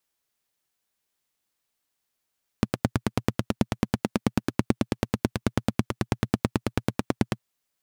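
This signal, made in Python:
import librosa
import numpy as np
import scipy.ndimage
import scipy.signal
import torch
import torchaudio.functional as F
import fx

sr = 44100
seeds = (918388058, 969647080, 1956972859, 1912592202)

y = fx.engine_single(sr, seeds[0], length_s=4.77, rpm=1100, resonances_hz=(120.0, 210.0))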